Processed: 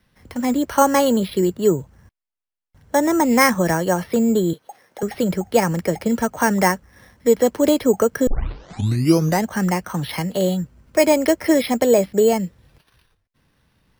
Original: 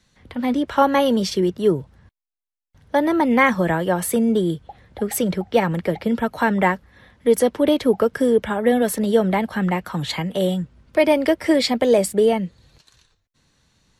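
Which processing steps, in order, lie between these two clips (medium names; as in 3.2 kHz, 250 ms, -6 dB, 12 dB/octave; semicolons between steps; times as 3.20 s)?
4.53–5.03 s: high-pass 420 Hz 12 dB/octave; careless resampling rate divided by 6×, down filtered, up hold; 8.27 s: tape start 1.18 s; trim +1 dB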